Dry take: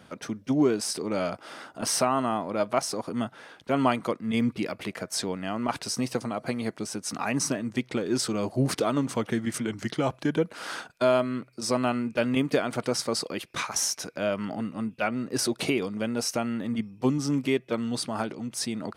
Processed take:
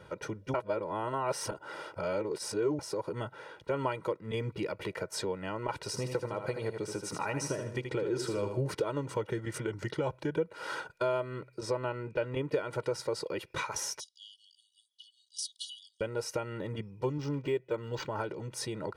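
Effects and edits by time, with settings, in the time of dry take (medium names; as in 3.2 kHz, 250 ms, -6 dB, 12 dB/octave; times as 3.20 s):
0.54–2.79 s: reverse
5.77–8.61 s: feedback delay 78 ms, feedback 32%, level -7.5 dB
11.61–12.54 s: treble shelf 5.2 kHz -9.5 dB
14.00–16.01 s: brick-wall FIR band-pass 2.9–11 kHz
17.12–18.21 s: decimation joined by straight lines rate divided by 4×
whole clip: treble shelf 2.5 kHz -10.5 dB; comb 2.1 ms, depth 88%; compression 2:1, threshold -34 dBFS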